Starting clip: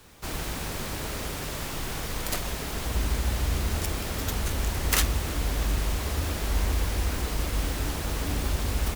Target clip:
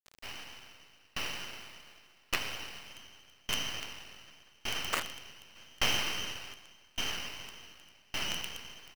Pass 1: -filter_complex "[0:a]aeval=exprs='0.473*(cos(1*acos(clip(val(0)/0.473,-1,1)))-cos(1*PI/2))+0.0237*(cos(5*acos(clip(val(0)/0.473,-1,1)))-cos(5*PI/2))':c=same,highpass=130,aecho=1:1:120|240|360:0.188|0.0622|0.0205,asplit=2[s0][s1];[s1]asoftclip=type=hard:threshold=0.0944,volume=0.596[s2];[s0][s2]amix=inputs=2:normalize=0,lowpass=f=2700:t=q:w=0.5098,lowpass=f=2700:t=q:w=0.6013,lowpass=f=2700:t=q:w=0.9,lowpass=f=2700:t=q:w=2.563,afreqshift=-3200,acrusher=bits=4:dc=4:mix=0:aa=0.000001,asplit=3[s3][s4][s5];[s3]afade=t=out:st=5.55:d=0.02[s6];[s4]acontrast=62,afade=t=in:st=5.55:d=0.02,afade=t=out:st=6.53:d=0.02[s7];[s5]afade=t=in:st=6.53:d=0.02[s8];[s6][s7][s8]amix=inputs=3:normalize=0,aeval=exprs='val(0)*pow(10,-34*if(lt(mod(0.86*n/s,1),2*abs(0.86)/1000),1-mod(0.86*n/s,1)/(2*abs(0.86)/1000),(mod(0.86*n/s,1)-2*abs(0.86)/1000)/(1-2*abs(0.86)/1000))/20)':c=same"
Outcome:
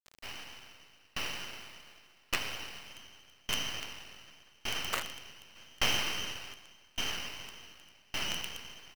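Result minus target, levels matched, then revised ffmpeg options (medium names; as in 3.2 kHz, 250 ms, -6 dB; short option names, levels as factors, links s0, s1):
hard clipper: distortion +13 dB
-filter_complex "[0:a]aeval=exprs='0.473*(cos(1*acos(clip(val(0)/0.473,-1,1)))-cos(1*PI/2))+0.0237*(cos(5*acos(clip(val(0)/0.473,-1,1)))-cos(5*PI/2))':c=same,highpass=130,aecho=1:1:120|240|360:0.188|0.0622|0.0205,asplit=2[s0][s1];[s1]asoftclip=type=hard:threshold=0.237,volume=0.596[s2];[s0][s2]amix=inputs=2:normalize=0,lowpass=f=2700:t=q:w=0.5098,lowpass=f=2700:t=q:w=0.6013,lowpass=f=2700:t=q:w=0.9,lowpass=f=2700:t=q:w=2.563,afreqshift=-3200,acrusher=bits=4:dc=4:mix=0:aa=0.000001,asplit=3[s3][s4][s5];[s3]afade=t=out:st=5.55:d=0.02[s6];[s4]acontrast=62,afade=t=in:st=5.55:d=0.02,afade=t=out:st=6.53:d=0.02[s7];[s5]afade=t=in:st=6.53:d=0.02[s8];[s6][s7][s8]amix=inputs=3:normalize=0,aeval=exprs='val(0)*pow(10,-34*if(lt(mod(0.86*n/s,1),2*abs(0.86)/1000),1-mod(0.86*n/s,1)/(2*abs(0.86)/1000),(mod(0.86*n/s,1)-2*abs(0.86)/1000)/(1-2*abs(0.86)/1000))/20)':c=same"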